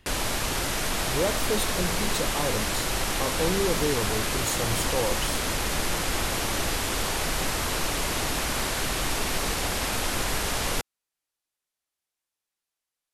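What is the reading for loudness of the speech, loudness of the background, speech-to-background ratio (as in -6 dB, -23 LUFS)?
-31.0 LUFS, -27.0 LUFS, -4.0 dB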